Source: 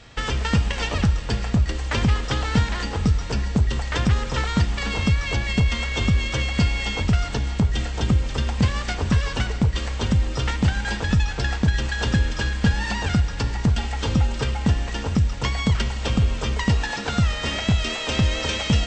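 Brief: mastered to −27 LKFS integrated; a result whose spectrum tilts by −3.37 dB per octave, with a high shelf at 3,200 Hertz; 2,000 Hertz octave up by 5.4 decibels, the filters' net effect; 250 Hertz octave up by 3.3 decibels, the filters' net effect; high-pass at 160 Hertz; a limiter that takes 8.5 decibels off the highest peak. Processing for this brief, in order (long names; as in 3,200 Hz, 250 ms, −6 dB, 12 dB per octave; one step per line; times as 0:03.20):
high-pass filter 160 Hz
parametric band 250 Hz +6 dB
parametric band 2,000 Hz +4 dB
high-shelf EQ 3,200 Hz +7.5 dB
level −3 dB
brickwall limiter −15.5 dBFS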